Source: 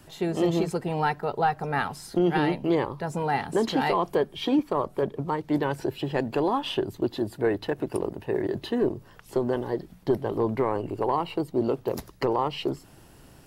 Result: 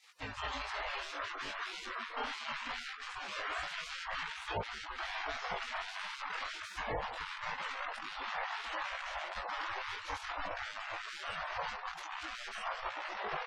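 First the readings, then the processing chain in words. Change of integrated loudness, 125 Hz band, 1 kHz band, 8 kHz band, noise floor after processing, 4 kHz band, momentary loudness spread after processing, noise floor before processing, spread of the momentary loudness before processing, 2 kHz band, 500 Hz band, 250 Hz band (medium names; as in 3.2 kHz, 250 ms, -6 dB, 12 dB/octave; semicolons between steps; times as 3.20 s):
-12.5 dB, -22.5 dB, -10.0 dB, -5.5 dB, -47 dBFS, -3.5 dB, 3 LU, -53 dBFS, 6 LU, -2.0 dB, -21.0 dB, -30.0 dB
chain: dead-time distortion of 0.12 ms; ever faster or slower copies 110 ms, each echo -7 st, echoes 3; bucket-brigade echo 163 ms, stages 1024, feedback 54%, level -9 dB; Chebyshev shaper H 3 -39 dB, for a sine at -10 dBFS; spectral gate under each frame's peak -25 dB weak; chorus 0.24 Hz, delay 18.5 ms, depth 2.8 ms; level rider gain up to 4.5 dB; spectral gate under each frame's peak -15 dB strong; peak limiter -32.5 dBFS, peak gain reduction 11 dB; tape spacing loss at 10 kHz 24 dB; tape noise reduction on one side only encoder only; trim +8.5 dB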